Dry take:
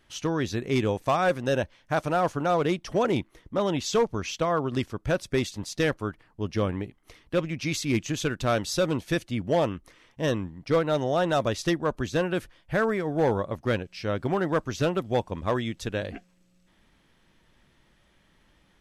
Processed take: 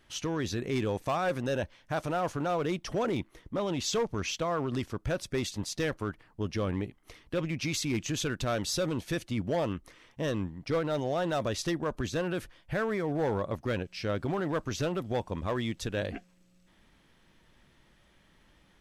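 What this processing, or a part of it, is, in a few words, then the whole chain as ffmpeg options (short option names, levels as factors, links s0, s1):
limiter into clipper: -af "alimiter=limit=0.0794:level=0:latency=1:release=22,asoftclip=type=hard:threshold=0.0668"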